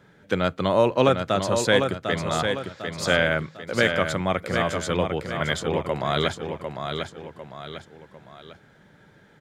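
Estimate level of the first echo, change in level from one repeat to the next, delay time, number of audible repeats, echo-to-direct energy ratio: −6.0 dB, −7.5 dB, 750 ms, 3, −5.0 dB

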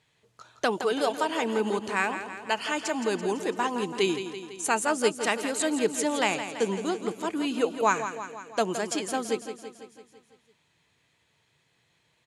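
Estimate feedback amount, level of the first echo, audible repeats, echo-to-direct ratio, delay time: 60%, −10.0 dB, 6, −8.0 dB, 167 ms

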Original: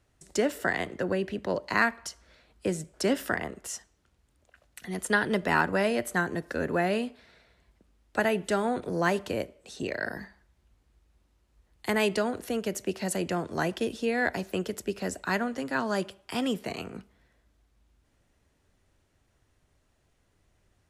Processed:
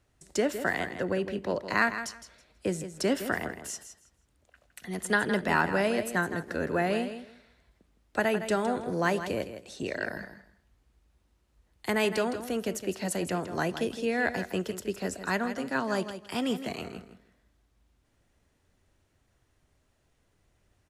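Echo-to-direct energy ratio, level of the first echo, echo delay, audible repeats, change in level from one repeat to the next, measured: −10.5 dB, −10.5 dB, 162 ms, 2, −14.5 dB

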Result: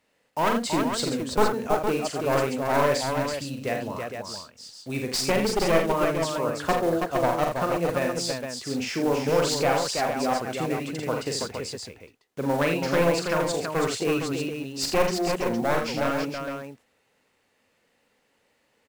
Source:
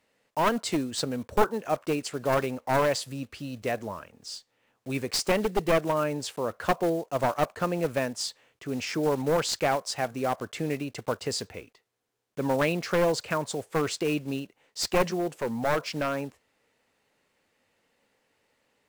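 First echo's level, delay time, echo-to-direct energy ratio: −5.0 dB, 43 ms, 0.0 dB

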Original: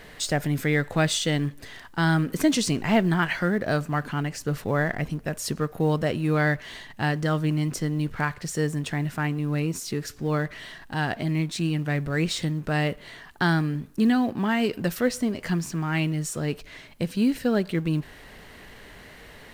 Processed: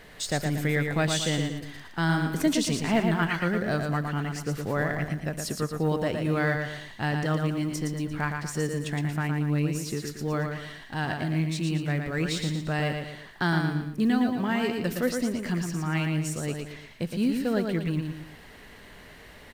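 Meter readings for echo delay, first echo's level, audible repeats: 115 ms, −5.0 dB, 3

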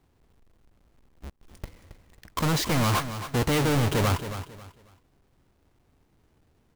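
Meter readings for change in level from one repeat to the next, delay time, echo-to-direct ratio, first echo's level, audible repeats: −11.0 dB, 272 ms, −10.5 dB, −11.0 dB, 3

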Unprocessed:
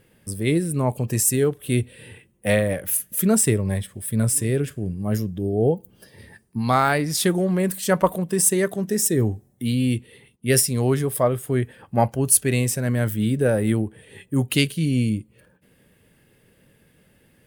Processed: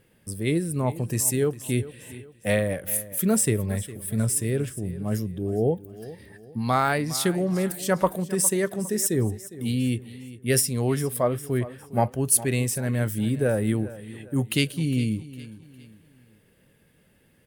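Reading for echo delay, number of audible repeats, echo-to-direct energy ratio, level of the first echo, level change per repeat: 407 ms, 3, −16.0 dB, −16.5 dB, −8.5 dB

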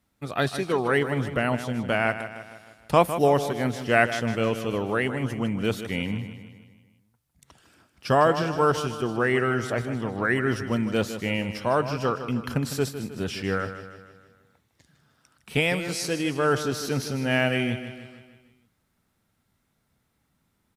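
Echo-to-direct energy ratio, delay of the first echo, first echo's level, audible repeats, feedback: −9.5 dB, 155 ms, −11.0 dB, 5, 52%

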